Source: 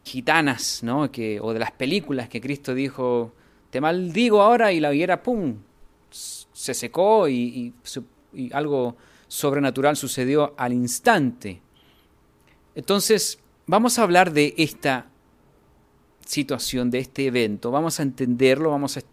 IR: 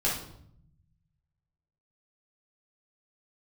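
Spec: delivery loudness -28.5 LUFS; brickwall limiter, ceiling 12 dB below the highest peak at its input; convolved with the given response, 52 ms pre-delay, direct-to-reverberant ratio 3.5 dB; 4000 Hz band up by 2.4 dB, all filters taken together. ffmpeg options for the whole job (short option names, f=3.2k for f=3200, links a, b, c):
-filter_complex "[0:a]equalizer=f=4k:t=o:g=3,alimiter=limit=-12.5dB:level=0:latency=1,asplit=2[a][b];[1:a]atrim=start_sample=2205,adelay=52[c];[b][c]afir=irnorm=-1:irlink=0,volume=-13dB[d];[a][d]amix=inputs=2:normalize=0,volume=-6dB"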